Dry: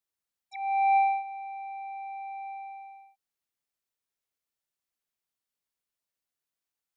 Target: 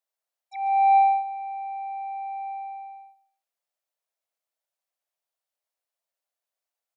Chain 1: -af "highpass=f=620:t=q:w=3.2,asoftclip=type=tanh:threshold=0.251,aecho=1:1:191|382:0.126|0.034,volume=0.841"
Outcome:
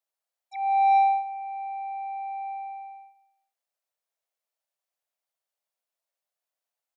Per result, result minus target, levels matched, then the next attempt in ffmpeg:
saturation: distortion +15 dB; echo 53 ms late
-af "highpass=f=620:t=q:w=3.2,asoftclip=type=tanh:threshold=0.668,aecho=1:1:191|382:0.126|0.034,volume=0.841"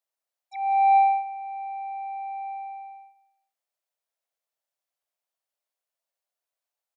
echo 53 ms late
-af "highpass=f=620:t=q:w=3.2,asoftclip=type=tanh:threshold=0.668,aecho=1:1:138|276:0.126|0.034,volume=0.841"

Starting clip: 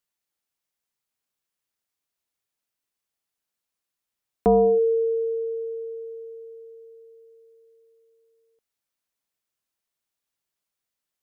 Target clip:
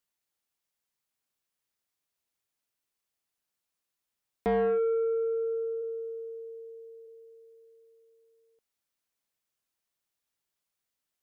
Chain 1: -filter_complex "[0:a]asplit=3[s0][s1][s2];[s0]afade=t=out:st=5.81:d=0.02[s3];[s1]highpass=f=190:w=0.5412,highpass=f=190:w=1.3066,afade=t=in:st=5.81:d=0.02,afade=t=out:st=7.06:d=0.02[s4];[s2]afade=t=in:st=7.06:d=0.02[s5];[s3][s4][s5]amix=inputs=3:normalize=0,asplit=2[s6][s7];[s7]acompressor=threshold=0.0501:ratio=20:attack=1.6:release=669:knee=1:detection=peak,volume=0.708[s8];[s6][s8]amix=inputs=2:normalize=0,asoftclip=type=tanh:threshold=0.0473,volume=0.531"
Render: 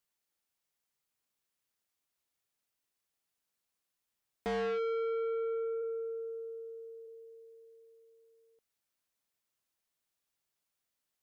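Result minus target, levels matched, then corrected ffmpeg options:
saturation: distortion +7 dB
-filter_complex "[0:a]asplit=3[s0][s1][s2];[s0]afade=t=out:st=5.81:d=0.02[s3];[s1]highpass=f=190:w=0.5412,highpass=f=190:w=1.3066,afade=t=in:st=5.81:d=0.02,afade=t=out:st=7.06:d=0.02[s4];[s2]afade=t=in:st=7.06:d=0.02[s5];[s3][s4][s5]amix=inputs=3:normalize=0,asplit=2[s6][s7];[s7]acompressor=threshold=0.0501:ratio=20:attack=1.6:release=669:knee=1:detection=peak,volume=0.708[s8];[s6][s8]amix=inputs=2:normalize=0,asoftclip=type=tanh:threshold=0.133,volume=0.531"

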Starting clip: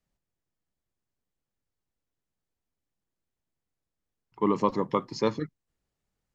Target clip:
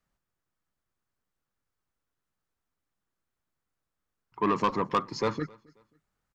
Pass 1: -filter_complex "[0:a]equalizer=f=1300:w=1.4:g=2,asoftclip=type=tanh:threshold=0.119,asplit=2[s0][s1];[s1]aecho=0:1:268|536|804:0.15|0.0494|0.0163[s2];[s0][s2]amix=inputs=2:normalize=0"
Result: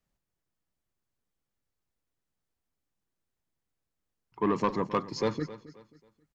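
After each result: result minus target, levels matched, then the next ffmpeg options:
echo-to-direct +9.5 dB; 1 kHz band -2.5 dB
-filter_complex "[0:a]equalizer=f=1300:w=1.4:g=2,asoftclip=type=tanh:threshold=0.119,asplit=2[s0][s1];[s1]aecho=0:1:268|536:0.0501|0.0165[s2];[s0][s2]amix=inputs=2:normalize=0"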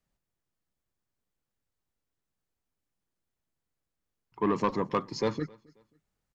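1 kHz band -2.5 dB
-filter_complex "[0:a]equalizer=f=1300:w=1.4:g=9,asoftclip=type=tanh:threshold=0.119,asplit=2[s0][s1];[s1]aecho=0:1:268|536:0.0501|0.0165[s2];[s0][s2]amix=inputs=2:normalize=0"

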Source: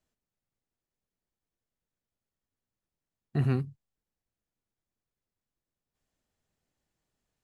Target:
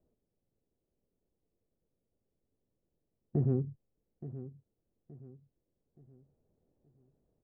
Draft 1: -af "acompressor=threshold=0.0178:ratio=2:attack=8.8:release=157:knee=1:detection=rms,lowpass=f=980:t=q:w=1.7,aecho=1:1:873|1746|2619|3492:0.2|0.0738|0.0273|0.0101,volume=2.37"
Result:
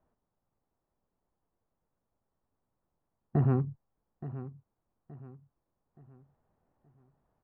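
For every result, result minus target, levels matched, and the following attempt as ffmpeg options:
1 kHz band +11.5 dB; compression: peak gain reduction -4.5 dB
-af "acompressor=threshold=0.0178:ratio=2:attack=8.8:release=157:knee=1:detection=rms,lowpass=f=470:t=q:w=1.7,aecho=1:1:873|1746|2619|3492:0.2|0.0738|0.0273|0.0101,volume=2.37"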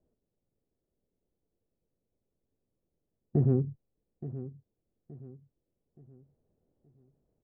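compression: peak gain reduction -4.5 dB
-af "acompressor=threshold=0.00668:ratio=2:attack=8.8:release=157:knee=1:detection=rms,lowpass=f=470:t=q:w=1.7,aecho=1:1:873|1746|2619|3492:0.2|0.0738|0.0273|0.0101,volume=2.37"

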